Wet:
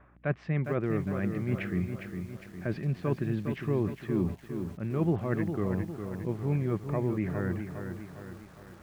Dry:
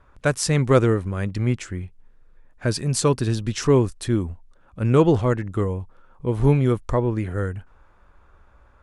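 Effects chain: reverse; compressor 6:1, threshold -30 dBFS, peak gain reduction 18 dB; reverse; speaker cabinet 160–2200 Hz, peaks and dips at 170 Hz +6 dB, 260 Hz -5 dB, 480 Hz -9 dB, 950 Hz -8 dB, 1400 Hz -7 dB; hum 60 Hz, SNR 29 dB; lo-fi delay 0.407 s, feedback 55%, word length 10-bit, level -7 dB; gain +6.5 dB

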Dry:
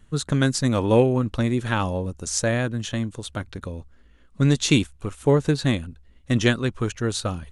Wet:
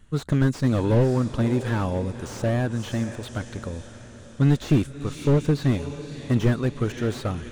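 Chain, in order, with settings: diffused feedback echo 0.566 s, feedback 54%, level -16 dB; slew limiter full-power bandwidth 54 Hz

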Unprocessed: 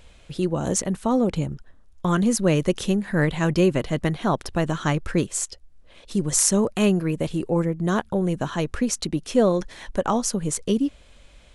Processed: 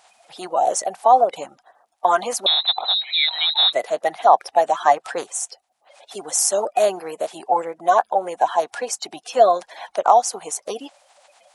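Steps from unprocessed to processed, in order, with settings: bin magnitudes rounded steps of 30 dB; 2.46–3.73 inverted band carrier 4000 Hz; resonant high-pass 740 Hz, resonance Q 6.7; gain +1 dB

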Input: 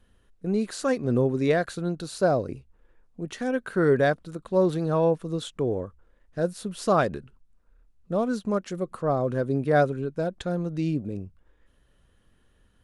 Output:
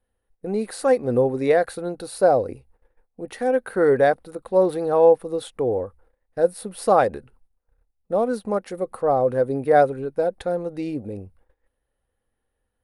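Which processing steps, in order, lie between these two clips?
notch 7400 Hz, Q 15; gate -55 dBFS, range -15 dB; thirty-one-band EQ 160 Hz -11 dB, 500 Hz +9 dB, 800 Hz +11 dB, 2000 Hz +4 dB, 3150 Hz -4 dB, 6300 Hz -7 dB, 10000 Hz +10 dB

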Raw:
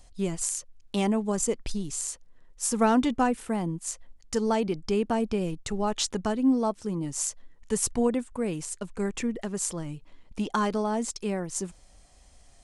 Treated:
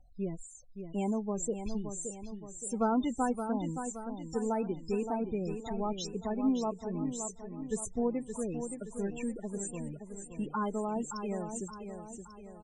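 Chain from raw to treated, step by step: loudest bins only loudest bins 16; high shelf 4800 Hz -11 dB, from 1.13 s +3.5 dB; feedback echo 0.571 s, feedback 48%, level -8 dB; gain -6.5 dB

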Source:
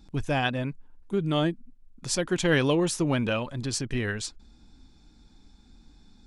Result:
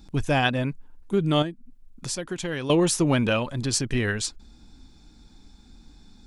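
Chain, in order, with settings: high shelf 7500 Hz +4.5 dB; 1.42–2.7 compressor 3:1, threshold -35 dBFS, peak gain reduction 13 dB; gain +4 dB

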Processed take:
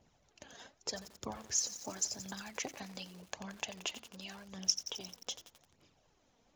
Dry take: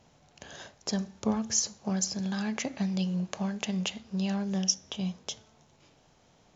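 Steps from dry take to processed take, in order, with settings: harmonic-percussive split harmonic -16 dB; phaser 0.86 Hz, delay 4.5 ms, feedback 47%; lo-fi delay 88 ms, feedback 80%, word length 7-bit, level -11.5 dB; gain -5 dB

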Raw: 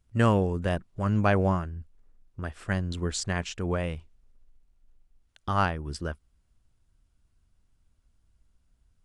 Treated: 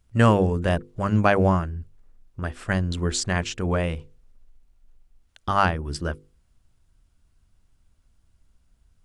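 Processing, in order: notches 50/100/150/200/250/300/350/400/450/500 Hz; gain +5.5 dB

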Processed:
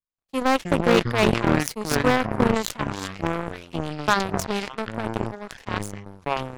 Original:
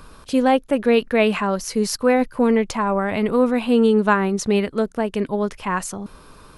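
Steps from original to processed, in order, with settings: 2.84–4.08 HPF 1300 Hz 24 dB/oct; echoes that change speed 0.151 s, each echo -7 st, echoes 2; overloaded stage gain 7.5 dB; power-law curve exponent 3; sustainer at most 83 dB/s

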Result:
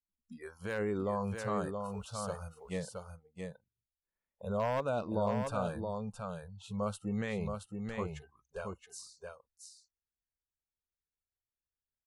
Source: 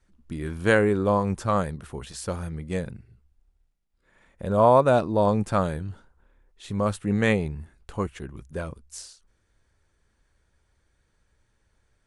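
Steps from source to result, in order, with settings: one-sided fold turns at -11.5 dBFS; limiter -16.5 dBFS, peak gain reduction 11 dB; spectral noise reduction 27 dB; 1.81–2.44 added noise pink -70 dBFS; on a send: echo 0.673 s -5 dB; on the sum: gain -8 dB

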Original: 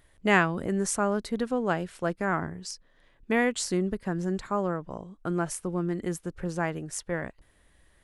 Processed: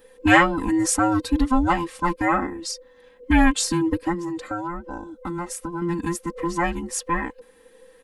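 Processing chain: band inversion scrambler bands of 500 Hz; comb 3.8 ms, depth 97%; 4.14–5.82 compressor 2.5:1, threshold -34 dBFS, peak gain reduction 9 dB; gain +4.5 dB

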